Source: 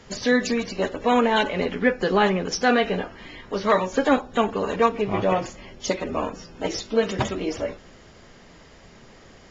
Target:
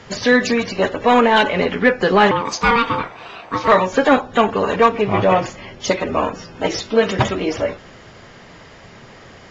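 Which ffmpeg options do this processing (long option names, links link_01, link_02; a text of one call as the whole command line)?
ffmpeg -i in.wav -filter_complex "[0:a]asettb=1/sr,asplit=3[link_01][link_02][link_03];[link_01]atrim=end=2.314[link_04];[link_02]atrim=start=2.31:end=3.68,asetpts=PTS-STARTPTS,afade=type=in:duration=0.004:curve=qsin,afade=type=out:start_time=1.366:duration=0.004:curve=qsin,aeval=exprs='val(0)*sin(2*PI*700*n/s)':channel_layout=same[link_05];[link_03]atrim=start=3.676[link_06];[link_04][link_05]acrossfade=duration=0.004:curve1=hsin:curve2=qsin[link_07];[link_07][link_06]acrossfade=duration=0.004:curve1=qsin:curve2=hsin,equalizer=frequency=110:width_type=o:width=1.4:gain=10,asplit=2[link_08][link_09];[link_09]highpass=frequency=720:poles=1,volume=11dB,asoftclip=type=tanh:threshold=-4.5dB[link_10];[link_08][link_10]amix=inputs=2:normalize=0,lowpass=frequency=3000:poles=1,volume=-6dB,volume=4dB" out.wav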